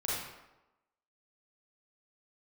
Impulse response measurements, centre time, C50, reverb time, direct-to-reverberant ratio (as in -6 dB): 80 ms, -2.0 dB, 1.0 s, -7.0 dB